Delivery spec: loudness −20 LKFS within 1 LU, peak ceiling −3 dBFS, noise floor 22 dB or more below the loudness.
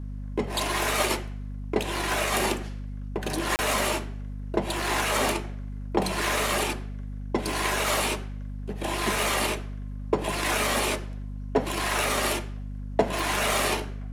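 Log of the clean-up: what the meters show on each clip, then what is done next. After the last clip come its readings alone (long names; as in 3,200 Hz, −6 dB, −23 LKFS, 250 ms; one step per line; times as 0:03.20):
number of dropouts 1; longest dropout 29 ms; mains hum 50 Hz; hum harmonics up to 250 Hz; level of the hum −32 dBFS; integrated loudness −27.0 LKFS; sample peak −7.5 dBFS; target loudness −20.0 LKFS
→ repair the gap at 0:03.56, 29 ms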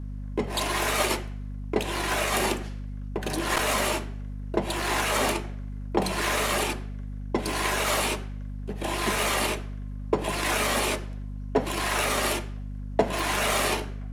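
number of dropouts 0; mains hum 50 Hz; hum harmonics up to 250 Hz; level of the hum −32 dBFS
→ mains-hum notches 50/100/150/200/250 Hz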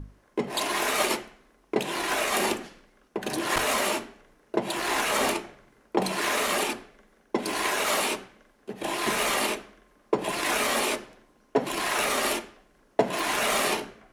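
mains hum none found; integrated loudness −27.0 LKFS; sample peak −7.5 dBFS; target loudness −20.0 LKFS
→ level +7 dB
brickwall limiter −3 dBFS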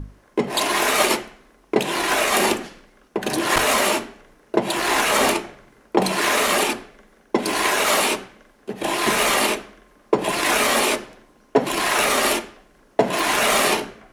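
integrated loudness −20.0 LKFS; sample peak −3.0 dBFS; background noise floor −56 dBFS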